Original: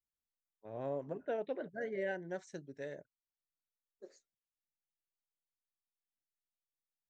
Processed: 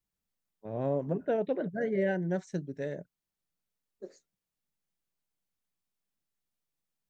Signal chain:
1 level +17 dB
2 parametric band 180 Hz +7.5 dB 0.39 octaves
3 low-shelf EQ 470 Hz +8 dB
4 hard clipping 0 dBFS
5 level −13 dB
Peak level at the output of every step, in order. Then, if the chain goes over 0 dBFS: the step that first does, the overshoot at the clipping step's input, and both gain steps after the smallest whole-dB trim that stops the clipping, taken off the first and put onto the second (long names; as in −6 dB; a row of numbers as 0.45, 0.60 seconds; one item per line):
−10.0, −10.5, −6.0, −6.0, −19.0 dBFS
no step passes full scale